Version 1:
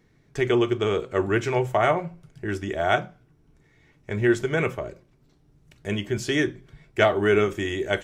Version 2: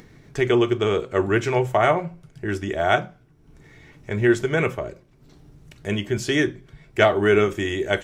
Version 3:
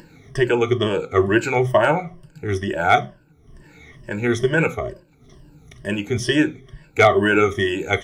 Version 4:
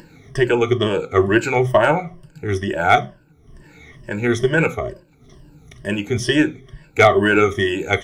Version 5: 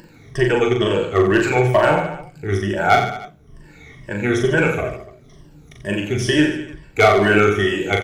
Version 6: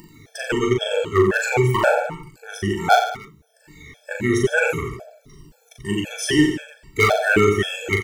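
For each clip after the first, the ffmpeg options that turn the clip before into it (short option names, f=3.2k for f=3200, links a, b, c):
-af "acompressor=mode=upward:threshold=-41dB:ratio=2.5,volume=2.5dB"
-af "afftfilt=real='re*pow(10,17/40*sin(2*PI*(1.3*log(max(b,1)*sr/1024/100)/log(2)-(-2.2)*(pts-256)/sr)))':imag='im*pow(10,17/40*sin(2*PI*(1.3*log(max(b,1)*sr/1024/100)/log(2)-(-2.2)*(pts-256)/sr)))':win_size=1024:overlap=0.75,asoftclip=type=hard:threshold=-3.5dB"
-af "aeval=exprs='0.708*(cos(1*acos(clip(val(0)/0.708,-1,1)))-cos(1*PI/2))+0.0398*(cos(2*acos(clip(val(0)/0.708,-1,1)))-cos(2*PI/2))':c=same,volume=1.5dB"
-filter_complex "[0:a]asoftclip=type=hard:threshold=-5dB,asplit=2[a][b];[b]aecho=0:1:40|88|145.6|214.7|297.7:0.631|0.398|0.251|0.158|0.1[c];[a][c]amix=inputs=2:normalize=0,volume=-1.5dB"
-af "crystalizer=i=1.5:c=0,afftfilt=real='re*gt(sin(2*PI*1.9*pts/sr)*(1-2*mod(floor(b*sr/1024/450),2)),0)':imag='im*gt(sin(2*PI*1.9*pts/sr)*(1-2*mod(floor(b*sr/1024/450),2)),0)':win_size=1024:overlap=0.75"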